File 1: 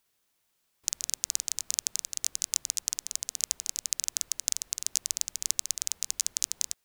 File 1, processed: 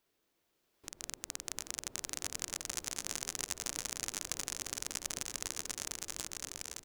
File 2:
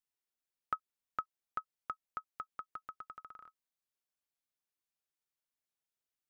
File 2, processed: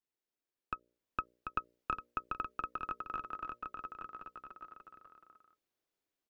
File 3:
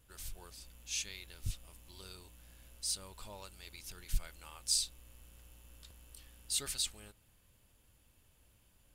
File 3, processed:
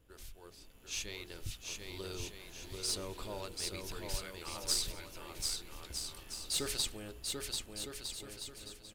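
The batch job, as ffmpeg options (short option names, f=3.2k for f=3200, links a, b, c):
-filter_complex "[0:a]highshelf=f=5.6k:g=10.5,bandreject=f=60:t=h:w=6,bandreject=f=120:t=h:w=6,bandreject=f=180:t=h:w=6,bandreject=f=240:t=h:w=6,bandreject=f=300:t=h:w=6,bandreject=f=360:t=h:w=6,bandreject=f=420:t=h:w=6,bandreject=f=480:t=h:w=6,bandreject=f=540:t=h:w=6,bandreject=f=600:t=h:w=6,acrossover=split=1200|6000[a][b][c];[a]acompressor=threshold=-49dB:ratio=4[d];[b]acompressor=threshold=-34dB:ratio=4[e];[c]acompressor=threshold=-25dB:ratio=4[f];[d][e][f]amix=inputs=3:normalize=0,firequalizer=gain_entry='entry(190,0);entry(320,8);entry(830,-2);entry(8800,-18)':delay=0.05:min_phase=1,alimiter=level_in=1dB:limit=-24dB:level=0:latency=1:release=310,volume=-1dB,aeval=exprs='(tanh(22.4*val(0)+0.8)-tanh(0.8))/22.4':c=same,dynaudnorm=f=100:g=21:m=8dB,asplit=2[g][h];[h]aecho=0:1:740|1258|1621|1874|2052:0.631|0.398|0.251|0.158|0.1[i];[g][i]amix=inputs=2:normalize=0,volume=5.5dB"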